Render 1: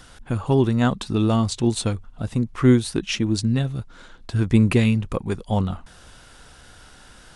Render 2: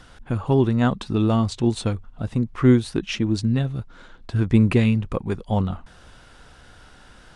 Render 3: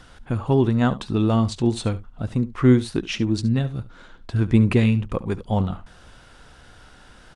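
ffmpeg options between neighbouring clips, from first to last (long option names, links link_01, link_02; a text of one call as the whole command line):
ffmpeg -i in.wav -af "lowpass=frequency=3400:poles=1" out.wav
ffmpeg -i in.wav -af "aecho=1:1:71:0.141" out.wav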